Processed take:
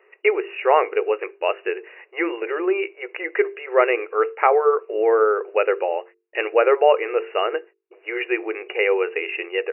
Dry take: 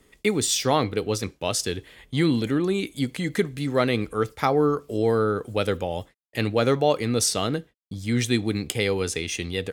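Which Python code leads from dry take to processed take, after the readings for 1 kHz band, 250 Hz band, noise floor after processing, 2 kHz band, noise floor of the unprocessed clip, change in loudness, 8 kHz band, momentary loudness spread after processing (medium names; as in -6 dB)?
+6.5 dB, -6.5 dB, -61 dBFS, +6.5 dB, -64 dBFS, +3.0 dB, under -40 dB, 11 LU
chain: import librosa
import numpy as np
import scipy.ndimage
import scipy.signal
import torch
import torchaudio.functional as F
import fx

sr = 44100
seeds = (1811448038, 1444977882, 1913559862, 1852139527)

y = fx.brickwall_bandpass(x, sr, low_hz=340.0, high_hz=2900.0)
y = fx.hum_notches(y, sr, base_hz=50, count=9)
y = y * librosa.db_to_amplitude(6.5)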